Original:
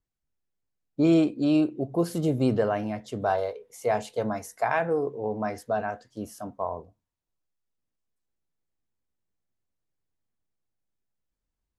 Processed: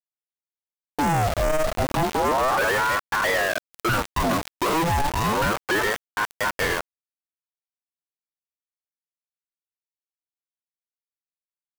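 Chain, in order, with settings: FFT order left unsorted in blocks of 16 samples; treble ducked by the level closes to 1500 Hz, closed at -22 dBFS; limiter -18 dBFS, peak gain reduction 6.5 dB; treble ducked by the level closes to 1400 Hz, closed at -23 dBFS; companded quantiser 2-bit; ring modulator with a swept carrier 790 Hz, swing 60%, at 0.32 Hz; gain +7.5 dB

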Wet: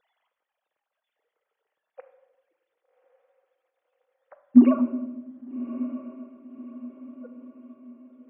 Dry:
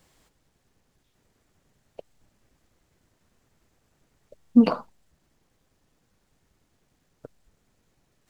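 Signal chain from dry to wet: sine-wave speech; diffused feedback echo 1.161 s, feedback 44%, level -14 dB; reverb RT60 1.2 s, pre-delay 6 ms, DRR 8 dB; gain +3 dB

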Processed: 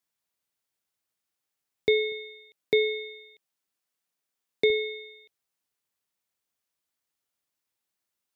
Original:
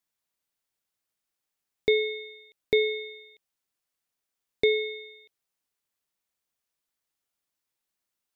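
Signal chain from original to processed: HPF 48 Hz 24 dB/oct, from 2.12 s 110 Hz, from 4.7 s 48 Hz

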